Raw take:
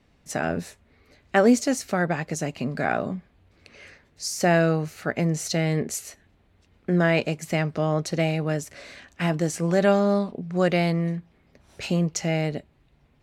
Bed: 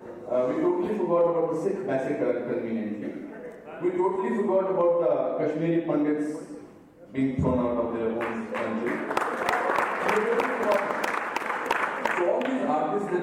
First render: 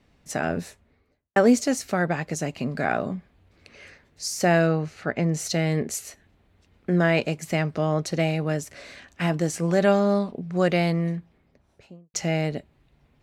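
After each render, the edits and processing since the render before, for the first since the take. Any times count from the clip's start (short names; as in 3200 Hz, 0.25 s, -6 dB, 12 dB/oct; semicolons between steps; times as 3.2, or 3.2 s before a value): 0.63–1.36 studio fade out; 4.67–5.33 air absorption 78 m; 11.08–12.14 studio fade out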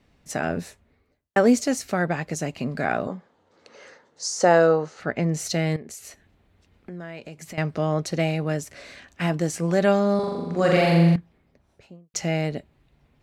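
3.07–5 speaker cabinet 220–8600 Hz, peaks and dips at 500 Hz +9 dB, 900 Hz +9 dB, 1300 Hz +5 dB, 2400 Hz -9 dB, 6400 Hz +4 dB; 5.76–7.58 compressor 4:1, threshold -37 dBFS; 10.15–11.16 flutter echo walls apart 7.2 m, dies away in 1.2 s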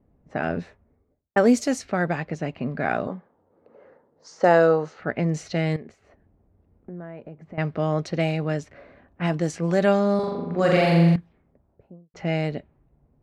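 low-pass opened by the level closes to 670 Hz, open at -18 dBFS; high shelf 6400 Hz -5 dB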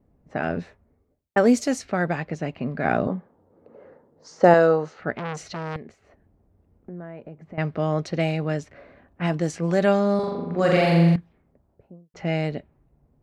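2.85–4.54 low shelf 480 Hz +7.5 dB; 5.16–5.76 core saturation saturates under 1800 Hz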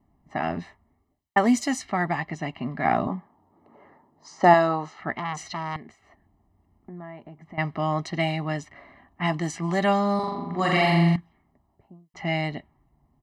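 tone controls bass -9 dB, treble -3 dB; comb 1 ms, depth 95%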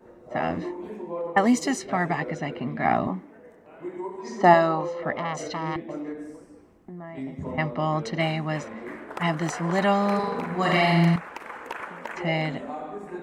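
add bed -9.5 dB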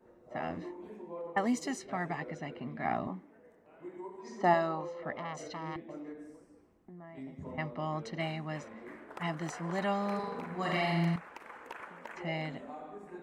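gain -10.5 dB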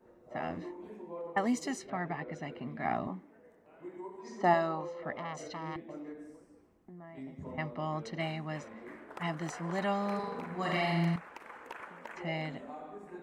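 1.9–2.32 air absorption 180 m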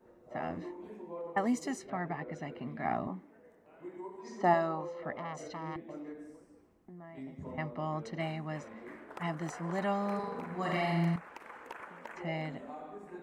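dynamic EQ 3700 Hz, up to -5 dB, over -53 dBFS, Q 0.83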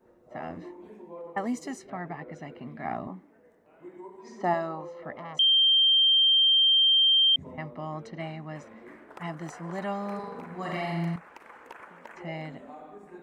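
5.39–7.36 bleep 3160 Hz -17.5 dBFS; 8.07–8.56 air absorption 57 m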